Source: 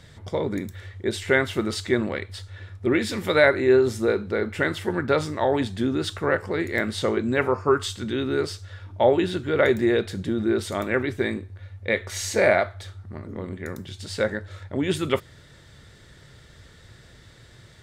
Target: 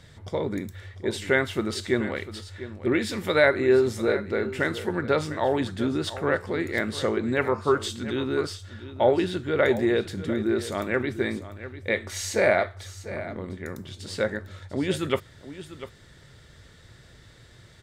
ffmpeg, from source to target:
-af "aecho=1:1:697:0.2,volume=0.794"

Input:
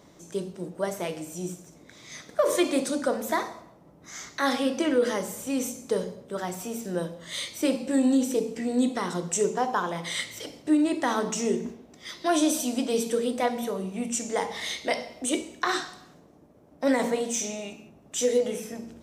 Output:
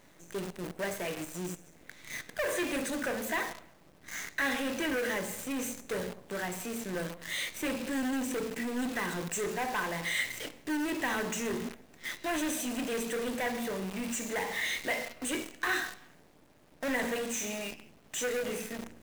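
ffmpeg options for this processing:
-af "asoftclip=type=tanh:threshold=0.0447,superequalizer=11b=2.82:12b=2:14b=0.447,acrusher=bits=7:dc=4:mix=0:aa=0.000001,volume=0.75"

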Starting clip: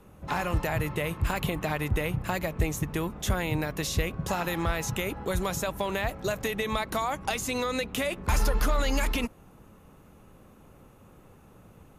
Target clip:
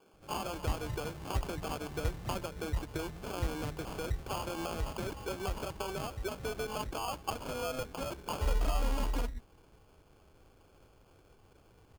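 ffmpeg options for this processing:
-filter_complex "[0:a]aecho=1:1:2.4:0.46,acrossover=split=180|5600[s0][s1][s2];[s2]adelay=30[s3];[s0]adelay=130[s4];[s4][s1][s3]amix=inputs=3:normalize=0,acrusher=samples=23:mix=1:aa=0.000001,volume=0.398"

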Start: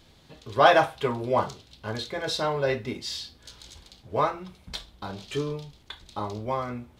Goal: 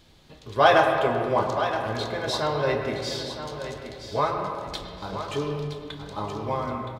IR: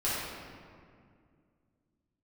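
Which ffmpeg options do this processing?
-filter_complex "[0:a]aecho=1:1:969|1938|2907:0.316|0.0885|0.0248,asplit=2[s0][s1];[1:a]atrim=start_sample=2205,lowpass=3800,adelay=101[s2];[s1][s2]afir=irnorm=-1:irlink=0,volume=0.224[s3];[s0][s3]amix=inputs=2:normalize=0"

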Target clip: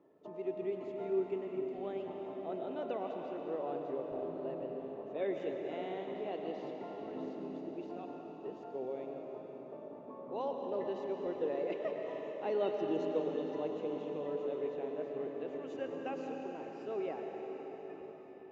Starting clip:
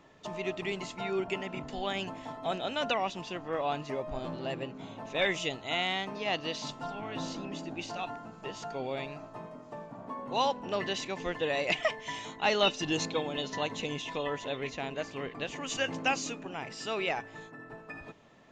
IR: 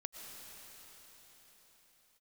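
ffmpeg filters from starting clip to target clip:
-filter_complex "[0:a]bandpass=f=390:t=q:w=2.1:csg=0[s0];[1:a]atrim=start_sample=2205[s1];[s0][s1]afir=irnorm=-1:irlink=0,volume=1.5"

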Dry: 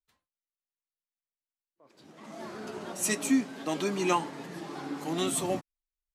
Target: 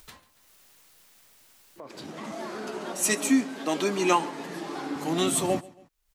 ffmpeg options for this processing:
-filter_complex "[0:a]aecho=1:1:138|276:0.0794|0.027,acompressor=mode=upward:threshold=0.0178:ratio=2.5,asettb=1/sr,asplit=3[s0][s1][s2];[s0]atrim=end=2.324[s3];[s1]atrim=start=2.32:end=4.96,asetpts=PTS-STARTPTS,afade=t=in:d=0.004:c=qsin,afade=t=out:st=2.636:d=0.004:c=qsin,highpass=210[s4];[s2]atrim=start=4.956[s5];[s3][s4]acrossfade=d=0.004:c1=hsin:c2=qsin[s6];[s6][s5]acrossfade=d=0.004:c1=qsin:c2=hsin,volume=1.68"

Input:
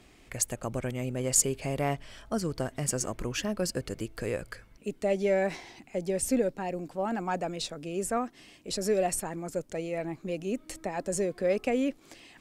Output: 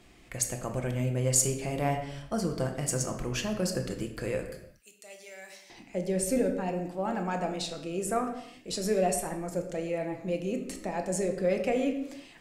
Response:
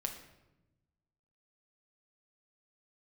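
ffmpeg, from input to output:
-filter_complex "[0:a]asettb=1/sr,asplit=3[s0][s1][s2];[s0]atrim=end=4.464[s3];[s1]atrim=start=4.46:end=5.7,asetpts=PTS-STARTPTS,afade=t=in:d=0.004:c=qsin,afade=t=out:st=1.236:d=0.004:c=qsin,aderivative[s4];[s2]atrim=start=5.696[s5];[s3][s4]acrossfade=d=0.004:c1=hsin:c2=qsin[s6];[s6][s5]acrossfade=d=0.004:c1=qsin:c2=hsin[s7];[1:a]atrim=start_sample=2205,afade=t=out:st=0.41:d=0.01,atrim=end_sample=18522[s8];[s7][s8]afir=irnorm=-1:irlink=0"

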